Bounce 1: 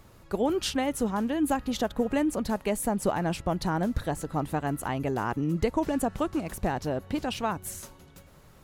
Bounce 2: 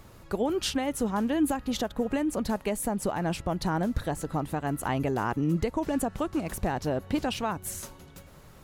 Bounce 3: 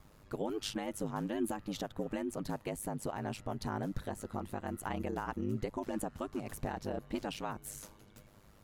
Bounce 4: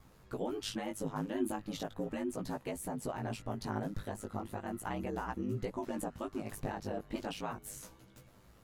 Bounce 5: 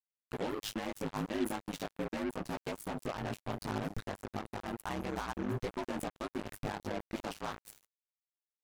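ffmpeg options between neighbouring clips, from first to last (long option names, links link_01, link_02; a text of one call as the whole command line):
ffmpeg -i in.wav -af "alimiter=limit=-20.5dB:level=0:latency=1:release=366,volume=3dB" out.wav
ffmpeg -i in.wav -af "aeval=exprs='val(0)*sin(2*PI*51*n/s)':channel_layout=same,volume=-6.5dB" out.wav
ffmpeg -i in.wav -af "flanger=delay=15.5:depth=3.5:speed=0.37,volume=2.5dB" out.wav
ffmpeg -i in.wav -af "acrusher=bits=5:mix=0:aa=0.5" out.wav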